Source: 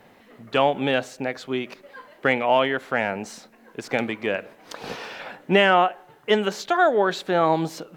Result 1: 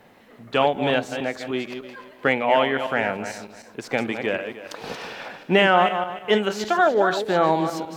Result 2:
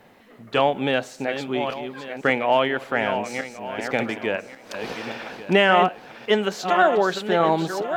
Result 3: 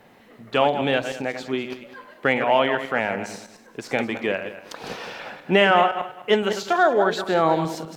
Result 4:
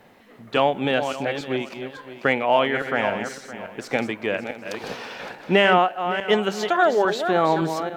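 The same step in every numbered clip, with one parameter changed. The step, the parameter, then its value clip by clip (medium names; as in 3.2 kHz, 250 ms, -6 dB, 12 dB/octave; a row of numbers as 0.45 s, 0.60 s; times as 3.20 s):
backward echo that repeats, time: 151 ms, 569 ms, 102 ms, 282 ms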